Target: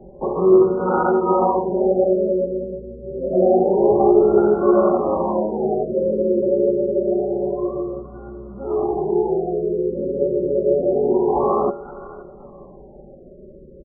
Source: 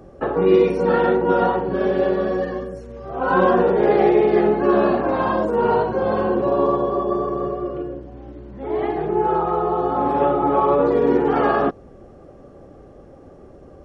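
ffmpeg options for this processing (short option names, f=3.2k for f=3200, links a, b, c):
-filter_complex "[0:a]bandreject=f=1.2k:w=19,aecho=1:1:5.2:0.76,bandreject=f=81.46:t=h:w=4,bandreject=f=162.92:t=h:w=4,bandreject=f=244.38:t=h:w=4,bandreject=f=325.84:t=h:w=4,bandreject=f=407.3:t=h:w=4,bandreject=f=488.76:t=h:w=4,bandreject=f=570.22:t=h:w=4,bandreject=f=651.68:t=h:w=4,bandreject=f=733.14:t=h:w=4,bandreject=f=814.6:t=h:w=4,bandreject=f=896.06:t=h:w=4,acrossover=split=220[a][b];[a]acompressor=threshold=-36dB:ratio=6[c];[c][b]amix=inputs=2:normalize=0,acrusher=samples=20:mix=1:aa=0.000001,asplit=2[d][e];[e]aecho=0:1:524|1048|1572:0.106|0.0339|0.0108[f];[d][f]amix=inputs=2:normalize=0,afftfilt=real='re*lt(b*sr/1024,560*pow(1500/560,0.5+0.5*sin(2*PI*0.27*pts/sr)))':imag='im*lt(b*sr/1024,560*pow(1500/560,0.5+0.5*sin(2*PI*0.27*pts/sr)))':win_size=1024:overlap=0.75"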